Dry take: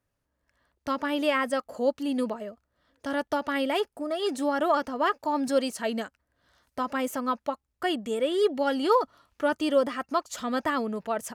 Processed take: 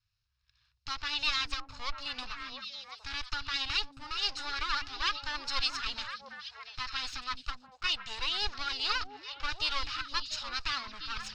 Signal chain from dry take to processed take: comb filter that takes the minimum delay 0.74 ms; FFT filter 120 Hz 0 dB, 230 Hz -29 dB, 5 kHz +11 dB, 11 kHz -26 dB; on a send: repeats whose band climbs or falls 348 ms, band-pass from 230 Hz, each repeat 1.4 oct, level -1 dB

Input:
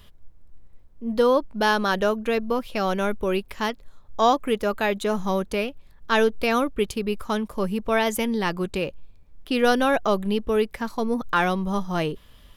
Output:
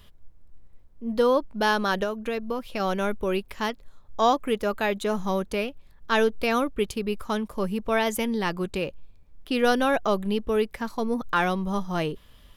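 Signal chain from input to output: 2.03–2.80 s: compression 3:1, threshold -24 dBFS, peak gain reduction 5.5 dB; trim -2 dB

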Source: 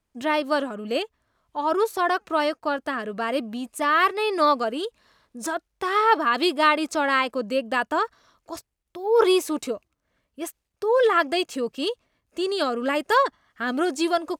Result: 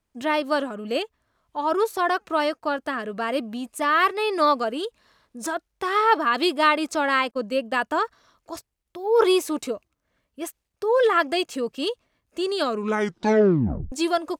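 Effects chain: 7.31–7.78 s: expander -28 dBFS; 12.64 s: tape stop 1.28 s

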